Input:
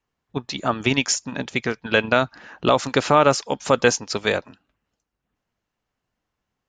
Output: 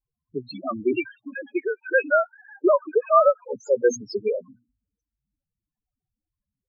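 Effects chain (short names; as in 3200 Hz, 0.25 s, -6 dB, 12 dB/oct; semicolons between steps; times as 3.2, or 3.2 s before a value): 0.92–3.48 sine-wave speech; notches 60/120/180/240 Hz; dynamic EQ 380 Hz, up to +5 dB, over -36 dBFS, Q 5.4; loudest bins only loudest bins 4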